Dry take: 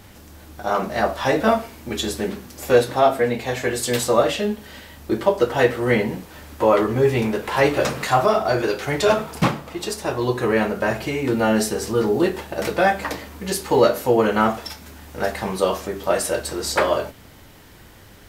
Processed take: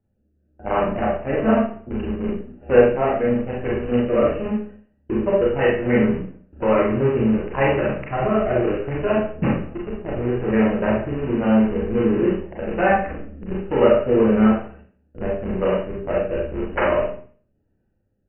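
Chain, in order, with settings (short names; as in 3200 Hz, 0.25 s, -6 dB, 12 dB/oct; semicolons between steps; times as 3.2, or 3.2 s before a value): Wiener smoothing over 41 samples; gate with hold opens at -33 dBFS; rotary speaker horn 1 Hz; in parallel at -7 dB: Schmitt trigger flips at -26 dBFS; on the sum: brick-wall FIR low-pass 3000 Hz; Schroeder reverb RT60 0.46 s, combs from 29 ms, DRR -3.5 dB; gain -3 dB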